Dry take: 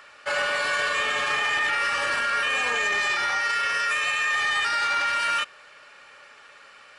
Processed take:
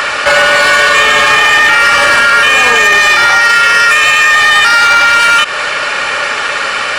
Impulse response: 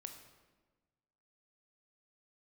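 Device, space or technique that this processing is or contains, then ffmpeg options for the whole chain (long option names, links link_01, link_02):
loud club master: -af "acompressor=threshold=-31dB:ratio=2,asoftclip=type=hard:threshold=-25.5dB,alimiter=level_in=36dB:limit=-1dB:release=50:level=0:latency=1,volume=-1dB"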